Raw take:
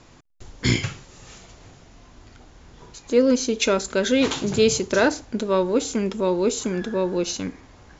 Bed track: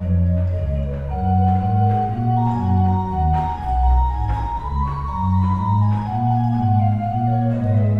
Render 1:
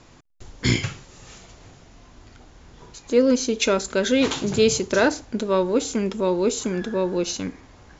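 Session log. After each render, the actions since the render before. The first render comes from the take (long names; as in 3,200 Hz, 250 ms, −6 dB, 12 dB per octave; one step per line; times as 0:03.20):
no processing that can be heard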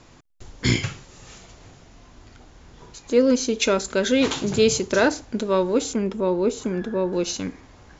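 0:05.93–0:07.13: high-shelf EQ 2,600 Hz −10 dB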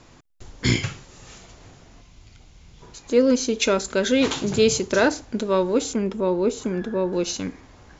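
0:02.02–0:02.83: gain on a spectral selection 210–2,000 Hz −8 dB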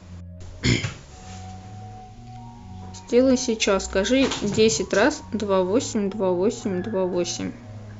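mix in bed track −22.5 dB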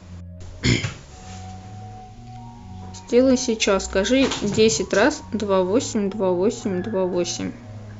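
level +1.5 dB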